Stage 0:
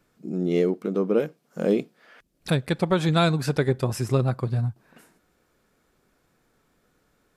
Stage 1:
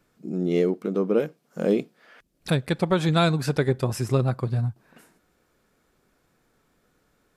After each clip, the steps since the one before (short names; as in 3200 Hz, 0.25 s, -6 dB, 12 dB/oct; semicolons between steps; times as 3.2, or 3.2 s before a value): nothing audible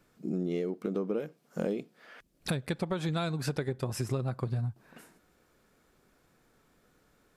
compressor 12:1, threshold -28 dBFS, peak gain reduction 12.5 dB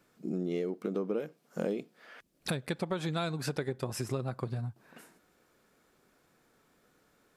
low shelf 94 Hz -11.5 dB